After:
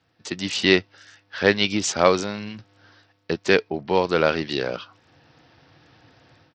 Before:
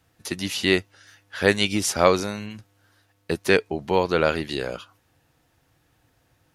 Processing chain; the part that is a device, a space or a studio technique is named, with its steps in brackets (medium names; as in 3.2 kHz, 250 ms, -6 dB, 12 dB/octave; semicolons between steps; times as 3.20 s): Bluetooth headset (high-pass 110 Hz 12 dB/octave; level rider gain up to 13 dB; resampled via 16 kHz; trim -1 dB; SBC 64 kbps 44.1 kHz)